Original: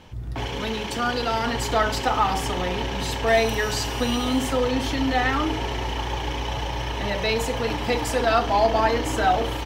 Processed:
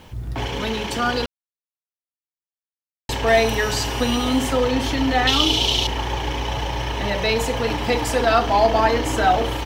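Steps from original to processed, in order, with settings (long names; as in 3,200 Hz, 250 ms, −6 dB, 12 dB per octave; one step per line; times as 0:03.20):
0:05.27–0:05.87: high shelf with overshoot 2,500 Hz +10.5 dB, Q 3
bit reduction 10 bits
0:01.26–0:03.09: silence
level +3 dB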